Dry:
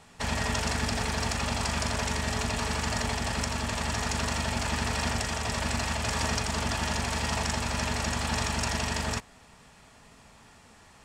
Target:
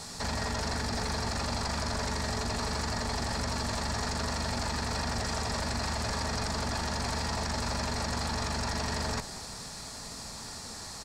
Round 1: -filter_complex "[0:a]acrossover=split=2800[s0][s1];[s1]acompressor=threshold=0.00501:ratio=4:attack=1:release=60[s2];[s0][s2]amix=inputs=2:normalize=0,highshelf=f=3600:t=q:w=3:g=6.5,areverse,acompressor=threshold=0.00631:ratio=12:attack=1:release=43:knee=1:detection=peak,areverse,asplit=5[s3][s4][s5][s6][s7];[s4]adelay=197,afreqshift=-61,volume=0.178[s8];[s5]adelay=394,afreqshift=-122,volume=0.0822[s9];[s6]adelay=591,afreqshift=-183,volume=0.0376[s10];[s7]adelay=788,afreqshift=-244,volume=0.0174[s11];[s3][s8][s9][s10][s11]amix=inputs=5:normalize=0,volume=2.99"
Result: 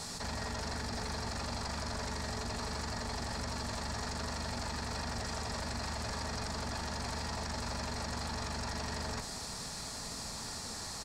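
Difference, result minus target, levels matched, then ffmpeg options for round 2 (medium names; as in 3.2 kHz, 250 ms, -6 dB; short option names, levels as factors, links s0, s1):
compression: peak gain reduction +6 dB
-filter_complex "[0:a]acrossover=split=2800[s0][s1];[s1]acompressor=threshold=0.00501:ratio=4:attack=1:release=60[s2];[s0][s2]amix=inputs=2:normalize=0,highshelf=f=3600:t=q:w=3:g=6.5,areverse,acompressor=threshold=0.0133:ratio=12:attack=1:release=43:knee=1:detection=peak,areverse,asplit=5[s3][s4][s5][s6][s7];[s4]adelay=197,afreqshift=-61,volume=0.178[s8];[s5]adelay=394,afreqshift=-122,volume=0.0822[s9];[s6]adelay=591,afreqshift=-183,volume=0.0376[s10];[s7]adelay=788,afreqshift=-244,volume=0.0174[s11];[s3][s8][s9][s10][s11]amix=inputs=5:normalize=0,volume=2.99"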